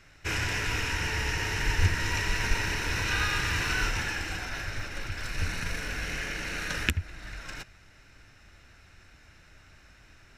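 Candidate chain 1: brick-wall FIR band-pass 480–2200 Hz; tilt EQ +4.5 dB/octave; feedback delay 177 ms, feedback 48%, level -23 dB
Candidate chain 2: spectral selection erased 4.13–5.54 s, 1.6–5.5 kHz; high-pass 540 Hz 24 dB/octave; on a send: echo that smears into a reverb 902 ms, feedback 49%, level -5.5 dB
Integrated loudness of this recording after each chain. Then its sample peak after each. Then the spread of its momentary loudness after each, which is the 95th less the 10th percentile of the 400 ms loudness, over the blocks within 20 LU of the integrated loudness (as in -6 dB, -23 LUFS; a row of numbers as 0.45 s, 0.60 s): -30.5 LUFS, -30.5 LUFS; -12.5 dBFS, -5.5 dBFS; 11 LU, 18 LU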